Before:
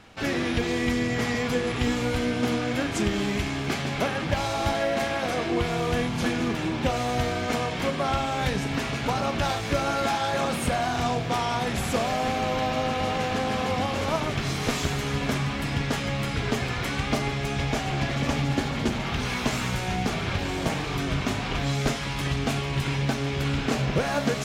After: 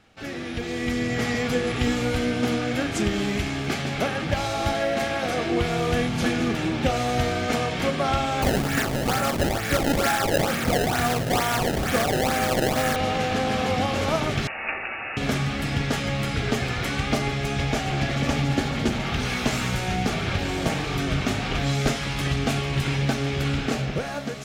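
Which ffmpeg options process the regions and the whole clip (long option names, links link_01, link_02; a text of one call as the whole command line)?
ffmpeg -i in.wav -filter_complex "[0:a]asettb=1/sr,asplit=3[link_01][link_02][link_03];[link_01]atrim=end=8.424[link_04];[link_02]atrim=start=8.42:end=12.96,asetpts=PTS-STARTPTS,afade=type=in:duration=0.004:curve=qsin,afade=type=out:start_time=4.536:duration=0.004:curve=qsin,equalizer=frequency=1700:width_type=o:width=0.69:gain=9,acrusher=samples=22:mix=1:aa=0.000001:lfo=1:lforange=35.2:lforate=2.2[link_05];[link_03]atrim=start=12.956[link_06];[link_04][link_05]acrossfade=duration=0.004:curve1=hsin:curve2=qsin[link_07];[link_07][link_06]acrossfade=duration=0.004:curve1=qsin:curve2=hsin,asettb=1/sr,asplit=3[link_08][link_09][link_10];[link_08]atrim=end=14.474[link_11];[link_09]atrim=start=14.47:end=15.17,asetpts=PTS-STARTPTS,afade=type=in:duration=0.004:curve=qsin,afade=type=out:start_time=0.696:duration=0.004:curve=qsin,highpass=480,lowpass=frequency=2600:width_type=q:width=0.5098,lowpass=frequency=2600:width_type=q:width=0.6013,lowpass=frequency=2600:width_type=q:width=0.9,lowpass=frequency=2600:width_type=q:width=2.563,afreqshift=-3000[link_12];[link_10]atrim=start=15.166[link_13];[link_11][link_12]acrossfade=duration=0.004:curve1=hsin:curve2=qsin[link_14];[link_14][link_13]acrossfade=duration=0.004:curve1=qsin:curve2=hsin,bandreject=frequency=1000:width=8.2,dynaudnorm=framelen=240:gausssize=7:maxgain=10.5dB,volume=-7dB" out.wav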